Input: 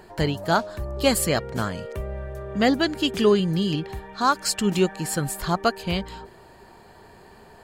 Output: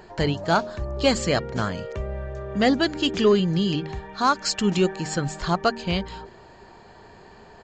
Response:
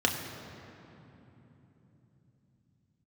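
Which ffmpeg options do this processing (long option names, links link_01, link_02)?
-af "aresample=16000,aresample=44100,bandreject=frequency=76.72:width_type=h:width=4,bandreject=frequency=153.44:width_type=h:width=4,bandreject=frequency=230.16:width_type=h:width=4,bandreject=frequency=306.88:width_type=h:width=4,bandreject=frequency=383.6:width_type=h:width=4,acontrast=72,volume=-5.5dB"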